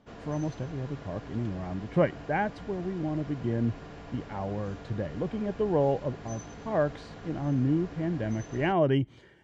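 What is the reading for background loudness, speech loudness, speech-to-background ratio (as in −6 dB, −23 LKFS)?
−45.0 LKFS, −31.0 LKFS, 14.0 dB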